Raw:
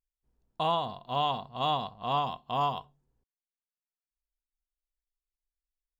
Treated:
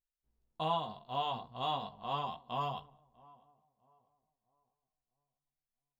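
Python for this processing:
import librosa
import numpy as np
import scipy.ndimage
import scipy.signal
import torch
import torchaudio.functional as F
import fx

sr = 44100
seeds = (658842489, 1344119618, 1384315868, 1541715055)

y = fx.echo_filtered(x, sr, ms=647, feedback_pct=39, hz=1200.0, wet_db=-23.5)
y = fx.chorus_voices(y, sr, voices=2, hz=0.35, base_ms=16, depth_ms=3.0, mix_pct=40)
y = y * 10.0 ** (-3.5 / 20.0)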